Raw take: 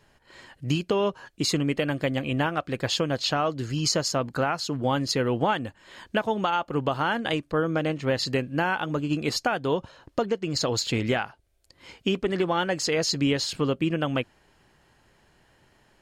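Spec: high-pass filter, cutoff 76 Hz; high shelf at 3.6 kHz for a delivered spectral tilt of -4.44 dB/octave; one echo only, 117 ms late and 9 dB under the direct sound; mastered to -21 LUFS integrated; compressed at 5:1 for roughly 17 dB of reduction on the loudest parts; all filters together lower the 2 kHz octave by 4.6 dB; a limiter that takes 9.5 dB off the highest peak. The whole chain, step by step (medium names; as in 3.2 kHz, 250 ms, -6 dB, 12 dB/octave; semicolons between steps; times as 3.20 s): high-pass 76 Hz; peaking EQ 2 kHz -8.5 dB; treble shelf 3.6 kHz +6 dB; compression 5:1, threshold -40 dBFS; peak limiter -32 dBFS; delay 117 ms -9 dB; trim +21.5 dB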